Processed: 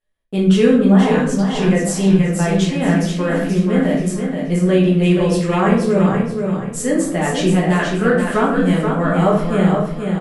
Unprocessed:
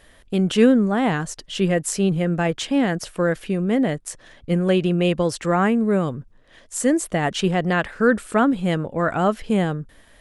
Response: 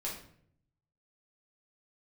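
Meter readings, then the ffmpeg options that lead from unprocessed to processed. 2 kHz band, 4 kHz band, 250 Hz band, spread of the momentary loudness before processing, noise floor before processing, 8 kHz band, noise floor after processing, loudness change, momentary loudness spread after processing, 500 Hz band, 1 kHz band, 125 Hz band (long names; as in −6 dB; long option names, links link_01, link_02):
+3.0 dB, +2.0 dB, +5.5 dB, 8 LU, −52 dBFS, +2.5 dB, −25 dBFS, +5.0 dB, 7 LU, +4.5 dB, +3.5 dB, +7.5 dB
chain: -filter_complex "[0:a]agate=range=-32dB:threshold=-40dB:ratio=16:detection=peak,aecho=1:1:479|958|1437|1916:0.531|0.175|0.0578|0.0191[link_01];[1:a]atrim=start_sample=2205[link_02];[link_01][link_02]afir=irnorm=-1:irlink=0,volume=1dB"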